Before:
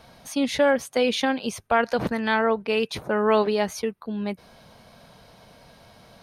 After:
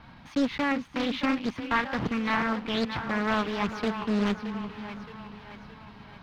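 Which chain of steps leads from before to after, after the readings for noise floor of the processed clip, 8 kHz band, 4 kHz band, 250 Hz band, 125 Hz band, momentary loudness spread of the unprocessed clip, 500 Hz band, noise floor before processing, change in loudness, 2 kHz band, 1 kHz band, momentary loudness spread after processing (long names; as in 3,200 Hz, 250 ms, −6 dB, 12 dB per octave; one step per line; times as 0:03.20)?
−50 dBFS, below −10 dB, −4.0 dB, −0.5 dB, +1.0 dB, 10 LU, −10.5 dB, −54 dBFS, −4.5 dB, −2.5 dB, −4.0 dB, 17 LU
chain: one scale factor per block 3 bits
flat-topped bell 520 Hz −11.5 dB 1.1 octaves
speech leveller 0.5 s
high-frequency loss of the air 330 metres
echo with a time of its own for lows and highs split 360 Hz, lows 351 ms, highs 621 ms, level −9.5 dB
highs frequency-modulated by the lows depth 0.59 ms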